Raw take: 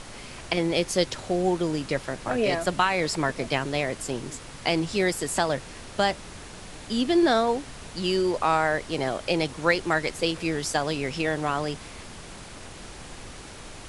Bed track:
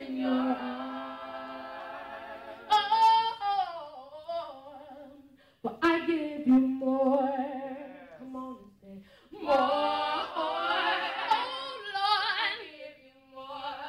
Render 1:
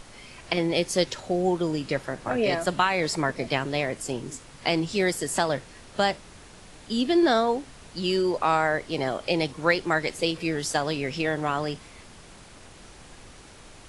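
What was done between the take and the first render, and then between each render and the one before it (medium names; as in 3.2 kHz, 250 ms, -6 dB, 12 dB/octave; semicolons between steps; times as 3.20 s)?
noise print and reduce 6 dB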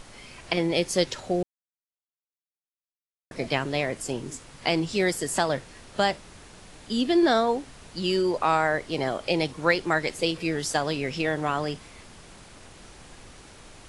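1.43–3.31 s: mute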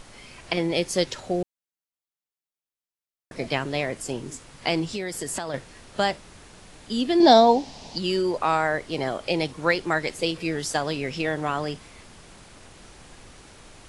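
4.92–5.54 s: compression, threshold -26 dBFS; 7.20–7.98 s: FFT filter 100 Hz 0 dB, 240 Hz +8 dB, 390 Hz +3 dB, 850 Hz +12 dB, 1.3 kHz -5 dB, 5.1 kHz +12 dB, 9.5 kHz -5 dB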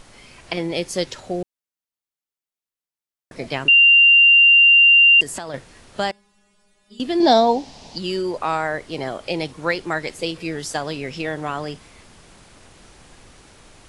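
3.68–5.21 s: bleep 2.78 kHz -8 dBFS; 6.11–7.00 s: inharmonic resonator 200 Hz, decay 0.45 s, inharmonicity 0.002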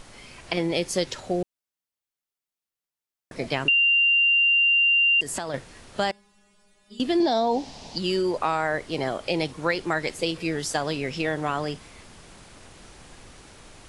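peak limiter -11 dBFS, peak gain reduction 8.5 dB; compression, threshold -18 dBFS, peak gain reduction 5 dB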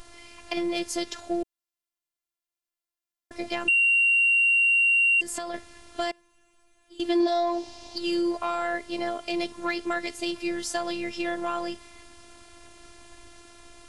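saturation -13.5 dBFS, distortion -24 dB; robot voice 344 Hz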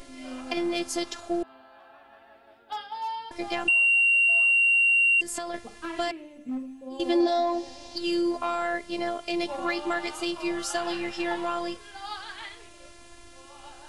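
add bed track -11 dB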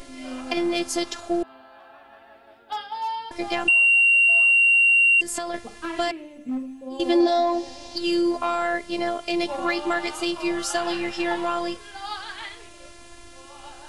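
trim +4 dB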